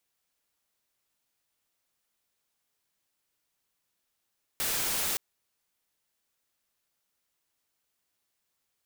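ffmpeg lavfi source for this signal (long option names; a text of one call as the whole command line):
ffmpeg -f lavfi -i "anoisesrc=color=white:amplitude=0.0548:duration=0.57:sample_rate=44100:seed=1" out.wav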